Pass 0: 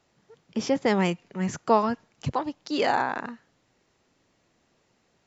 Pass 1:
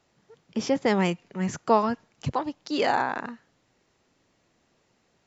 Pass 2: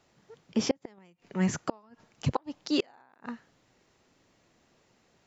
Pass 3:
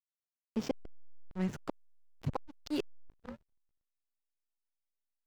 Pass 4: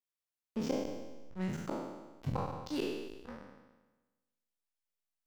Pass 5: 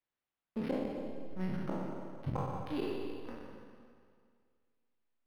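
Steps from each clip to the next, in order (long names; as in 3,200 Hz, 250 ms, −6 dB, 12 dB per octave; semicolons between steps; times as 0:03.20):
no processing that can be heard
gate with flip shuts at −15 dBFS, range −35 dB; level +1.5 dB
sound drawn into the spectrogram rise, 0:03.09–0:04.03, 340–2,300 Hz −36 dBFS; slack as between gear wheels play −26.5 dBFS; level −6.5 dB
peak hold with a decay on every bin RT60 1.18 s; level −3.5 dB
on a send at −5 dB: convolution reverb RT60 2.0 s, pre-delay 114 ms; on the sum: linearly interpolated sample-rate reduction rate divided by 6×; level −1 dB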